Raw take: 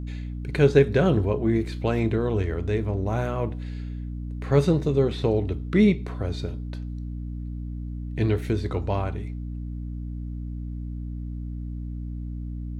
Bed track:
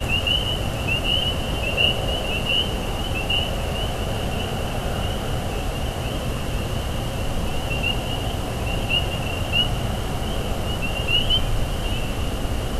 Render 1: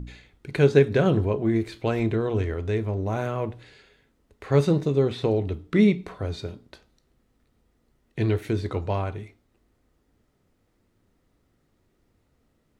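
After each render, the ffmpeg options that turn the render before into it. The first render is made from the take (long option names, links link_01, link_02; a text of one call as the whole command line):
ffmpeg -i in.wav -af "bandreject=frequency=60:width_type=h:width=4,bandreject=frequency=120:width_type=h:width=4,bandreject=frequency=180:width_type=h:width=4,bandreject=frequency=240:width_type=h:width=4,bandreject=frequency=300:width_type=h:width=4" out.wav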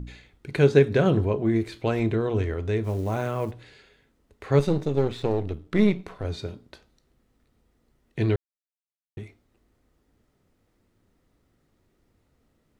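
ffmpeg -i in.wav -filter_complex "[0:a]asplit=3[link_01][link_02][link_03];[link_01]afade=type=out:start_time=2.83:duration=0.02[link_04];[link_02]acrusher=bits=7:mode=log:mix=0:aa=0.000001,afade=type=in:start_time=2.83:duration=0.02,afade=type=out:start_time=3.51:duration=0.02[link_05];[link_03]afade=type=in:start_time=3.51:duration=0.02[link_06];[link_04][link_05][link_06]amix=inputs=3:normalize=0,asettb=1/sr,asplit=3[link_07][link_08][link_09];[link_07]atrim=end=4.594[link_10];[link_08]atrim=start=4.59:end=6.25,asetpts=PTS-STARTPTS,afade=type=in:duration=0.004:curve=qsin,afade=type=out:start_time=1.656:duration=0.004:curve=qsin,aeval=exprs='if(lt(val(0),0),0.447*val(0),val(0))':channel_layout=same[link_11];[link_09]atrim=start=6.246[link_12];[link_10][link_11]acrossfade=duration=0.004:curve1=hsin:curve2=qsin[link_13];[link_13][link_12]acrossfade=duration=0.004:curve1=qsin:curve2=hsin,asplit=3[link_14][link_15][link_16];[link_14]atrim=end=8.36,asetpts=PTS-STARTPTS,afade=type=out:start_time=8.356:duration=0.004:curve=hsin[link_17];[link_15]atrim=start=8.36:end=9.17,asetpts=PTS-STARTPTS,volume=0[link_18];[link_16]atrim=start=9.17,asetpts=PTS-STARTPTS,afade=type=in:duration=0.004:curve=hsin[link_19];[link_17][link_18][link_19]concat=n=3:v=0:a=1" out.wav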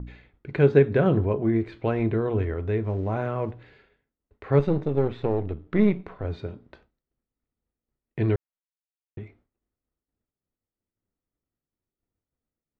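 ffmpeg -i in.wav -af "lowpass=2200,agate=range=-33dB:threshold=-53dB:ratio=3:detection=peak" out.wav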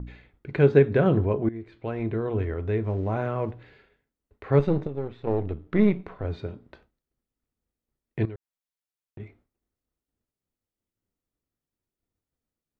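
ffmpeg -i in.wav -filter_complex "[0:a]asettb=1/sr,asplit=3[link_01][link_02][link_03];[link_01]atrim=end=8.254[link_04];[link_02]atrim=start=8.25:end=9.2,asetpts=PTS-STARTPTS,afade=type=in:duration=0.004:curve=qsin,afade=type=out:start_time=0.946:duration=0.004:curve=qsin,acompressor=threshold=-38dB:ratio=4:attack=3.2:release=140:knee=1:detection=peak[link_05];[link_03]atrim=start=9.196[link_06];[link_04][link_05]acrossfade=duration=0.004:curve1=hsin:curve2=qsin[link_07];[link_07][link_06]acrossfade=duration=0.004:curve1=qsin:curve2=hsin,asplit=4[link_08][link_09][link_10][link_11];[link_08]atrim=end=1.49,asetpts=PTS-STARTPTS,afade=type=out:start_time=1.486:duration=0.004:curve=hsin:silence=0.149624[link_12];[link_09]atrim=start=1.49:end=4.872,asetpts=PTS-STARTPTS,afade=type=in:duration=1.56:curve=qsin:silence=0.149624[link_13];[link_10]atrim=start=4.868:end=5.272,asetpts=PTS-STARTPTS,volume=-8.5dB[link_14];[link_11]atrim=start=5.268[link_15];[link_12][link_13]concat=n=2:v=0:a=1[link_16];[link_16][link_14]acrossfade=duration=0.004:curve1=hsin:curve2=hsin[link_17];[link_17][link_15]acrossfade=duration=0.004:curve1=hsin:curve2=hsin" out.wav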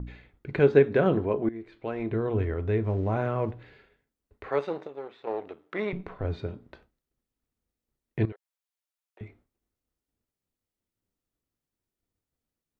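ffmpeg -i in.wav -filter_complex "[0:a]asettb=1/sr,asplit=3[link_01][link_02][link_03];[link_01]atrim=end=0.594[link_04];[link_02]atrim=start=0.59:end=2.11,asetpts=PTS-STARTPTS,afade=type=in:duration=0.004:curve=qsin,afade=type=out:start_time=1.516:duration=0.004:curve=qsin,equalizer=frequency=99:width=0.99:gain=-10.5[link_05];[link_03]atrim=start=2.106[link_06];[link_04][link_05]acrossfade=duration=0.004:curve1=hsin:curve2=qsin[link_07];[link_07][link_06]acrossfade=duration=0.004:curve1=qsin:curve2=hsin,asettb=1/sr,asplit=3[link_08][link_09][link_10];[link_08]atrim=end=4.494[link_11];[link_09]atrim=start=4.49:end=5.93,asetpts=PTS-STARTPTS,afade=type=in:duration=0.004:curve=qsin,afade=type=out:start_time=1.436:duration=0.004:curve=qsin,highpass=560[link_12];[link_10]atrim=start=5.926[link_13];[link_11][link_12]acrossfade=duration=0.004:curve1=hsin:curve2=qsin[link_14];[link_14][link_13]acrossfade=duration=0.004:curve1=qsin:curve2=hsin,asettb=1/sr,asplit=3[link_15][link_16][link_17];[link_15]atrim=end=8.324[link_18];[link_16]atrim=start=8.32:end=9.21,asetpts=PTS-STARTPTS,afade=type=in:duration=0.004:curve=qsin,afade=type=out:start_time=0.886:duration=0.004:curve=qsin,highpass=frequency=550:width=0.5412,highpass=frequency=550:width=1.3066[link_19];[link_17]atrim=start=9.206[link_20];[link_18][link_19]acrossfade=duration=0.004:curve1=hsin:curve2=qsin[link_21];[link_21][link_20]acrossfade=duration=0.004:curve1=qsin:curve2=hsin" out.wav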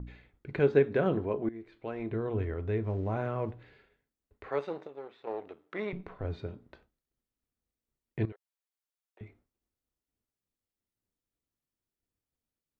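ffmpeg -i in.wav -af "volume=-5dB" out.wav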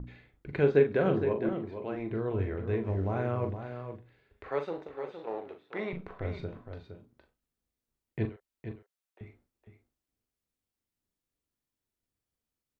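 ffmpeg -i in.wav -filter_complex "[0:a]asplit=2[link_01][link_02];[link_02]adelay=41,volume=-8dB[link_03];[link_01][link_03]amix=inputs=2:normalize=0,asplit=2[link_04][link_05];[link_05]aecho=0:1:463:0.355[link_06];[link_04][link_06]amix=inputs=2:normalize=0" out.wav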